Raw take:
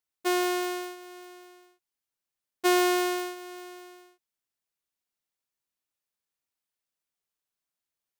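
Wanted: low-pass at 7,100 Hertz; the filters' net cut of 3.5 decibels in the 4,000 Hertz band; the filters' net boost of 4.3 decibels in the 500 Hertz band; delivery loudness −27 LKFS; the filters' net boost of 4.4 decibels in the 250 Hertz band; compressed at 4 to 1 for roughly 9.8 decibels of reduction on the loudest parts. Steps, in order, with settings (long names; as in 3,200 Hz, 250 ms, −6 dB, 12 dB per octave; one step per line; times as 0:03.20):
low-pass filter 7,100 Hz
parametric band 250 Hz +5.5 dB
parametric band 500 Hz +3.5 dB
parametric band 4,000 Hz −4.5 dB
downward compressor 4 to 1, threshold −29 dBFS
level +6 dB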